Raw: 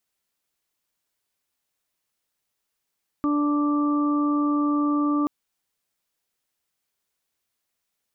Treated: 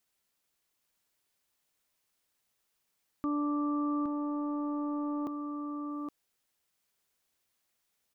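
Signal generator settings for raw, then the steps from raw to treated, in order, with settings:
steady additive tone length 2.03 s, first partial 293 Hz, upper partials -16/-19.5/-7.5 dB, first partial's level -20 dB
transient shaper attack +2 dB, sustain -7 dB; peak limiter -27 dBFS; on a send: delay 817 ms -6.5 dB

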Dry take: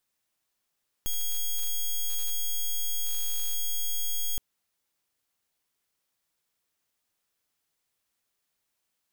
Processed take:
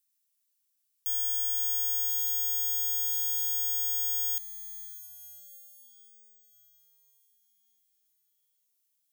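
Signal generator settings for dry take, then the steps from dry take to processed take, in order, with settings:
pulse 3.3 kHz, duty 7% -27 dBFS 3.32 s
differentiator; echo that smears into a reverb 585 ms, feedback 51%, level -13 dB

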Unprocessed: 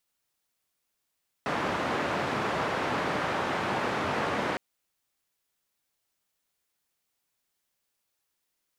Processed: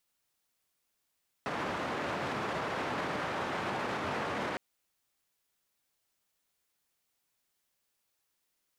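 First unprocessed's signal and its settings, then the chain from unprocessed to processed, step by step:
noise band 120–1300 Hz, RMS -29.5 dBFS 3.11 s
peak limiter -26.5 dBFS

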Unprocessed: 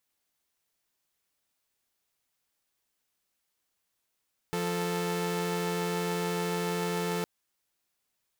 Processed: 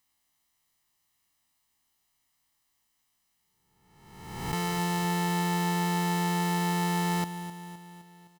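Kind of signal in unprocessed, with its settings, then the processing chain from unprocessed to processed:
chord F3/A4 saw, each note -29 dBFS 2.71 s
reverse spectral sustain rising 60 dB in 1.16 s; comb 1 ms, depth 62%; feedback delay 258 ms, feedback 55%, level -12 dB

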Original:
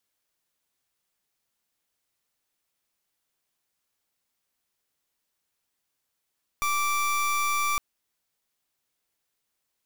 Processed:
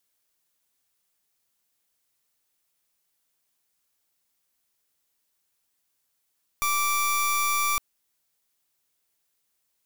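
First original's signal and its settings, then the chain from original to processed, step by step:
pulse 1.17 kHz, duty 28% -25.5 dBFS 1.16 s
treble shelf 5.6 kHz +6.5 dB

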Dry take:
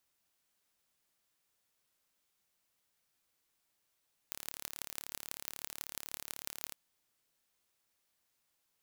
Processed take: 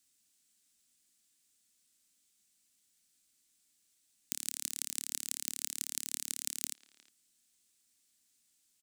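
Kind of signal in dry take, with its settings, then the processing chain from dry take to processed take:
pulse train 36.2 per s, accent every 6, -10.5 dBFS 2.41 s
ten-band graphic EQ 125 Hz -4 dB, 250 Hz +9 dB, 500 Hz -8 dB, 1 kHz -9 dB, 4 kHz +3 dB, 8 kHz +12 dB; speakerphone echo 360 ms, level -16 dB

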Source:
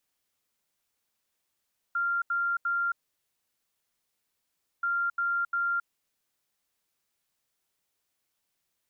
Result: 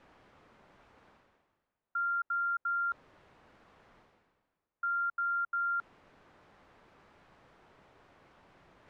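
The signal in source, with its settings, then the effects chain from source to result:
beep pattern sine 1.39 kHz, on 0.27 s, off 0.08 s, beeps 3, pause 1.91 s, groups 2, -25 dBFS
low-pass 1.3 kHz 12 dB/octave; reverse; upward compressor, threshold -38 dBFS; reverse

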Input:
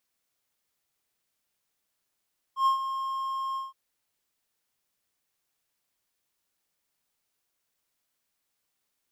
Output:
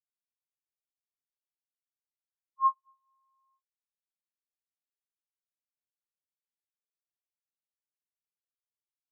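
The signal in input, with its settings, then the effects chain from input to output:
ADSR triangle 1.07 kHz, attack 102 ms, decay 114 ms, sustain -10.5 dB, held 1.00 s, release 169 ms -16.5 dBFS
feedback delay 107 ms, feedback 32%, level -5 dB; spectral contrast expander 4:1

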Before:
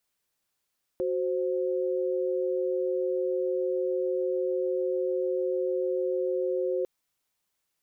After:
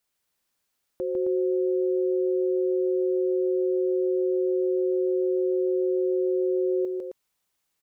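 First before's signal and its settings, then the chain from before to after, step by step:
chord F#4/C5 sine, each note -28 dBFS 5.85 s
loudspeakers at several distances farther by 52 m -3 dB, 91 m -7 dB

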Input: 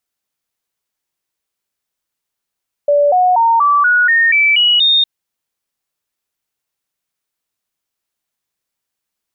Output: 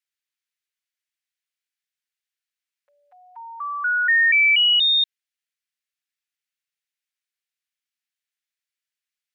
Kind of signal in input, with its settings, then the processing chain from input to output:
stepped sine 579 Hz up, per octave 3, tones 9, 0.24 s, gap 0.00 s -8 dBFS
inverse Chebyshev high-pass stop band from 670 Hz, stop band 50 dB; tilt EQ -3.5 dB/octave

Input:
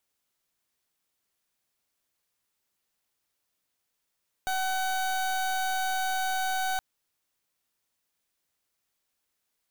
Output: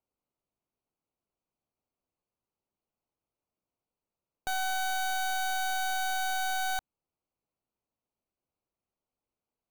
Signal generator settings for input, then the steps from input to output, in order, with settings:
pulse 755 Hz, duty 29% -28.5 dBFS 2.32 s
local Wiener filter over 25 samples; dynamic bell 550 Hz, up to -4 dB, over -47 dBFS, Q 1.3

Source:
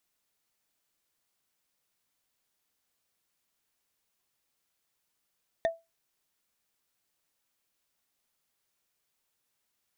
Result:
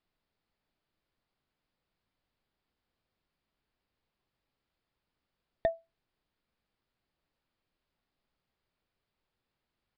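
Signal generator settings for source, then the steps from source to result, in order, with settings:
wood hit, lowest mode 662 Hz, decay 0.22 s, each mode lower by 7.5 dB, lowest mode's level -20 dB
tilt EQ -2.5 dB/octave; resampled via 11.025 kHz

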